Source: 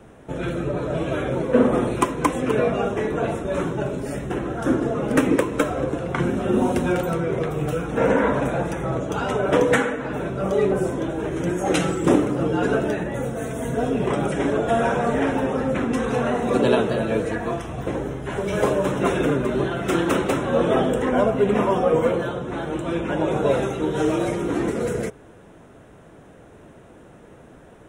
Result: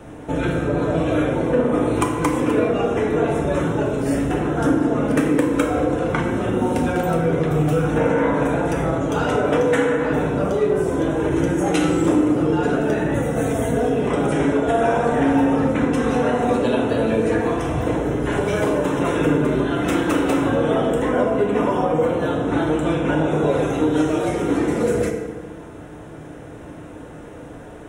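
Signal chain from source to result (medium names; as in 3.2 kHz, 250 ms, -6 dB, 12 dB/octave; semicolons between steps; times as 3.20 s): compression 4:1, threshold -26 dBFS, peak gain reduction 12.5 dB; FDN reverb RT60 1.3 s, low-frequency decay 1.2×, high-frequency decay 0.6×, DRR 1.5 dB; trim +6 dB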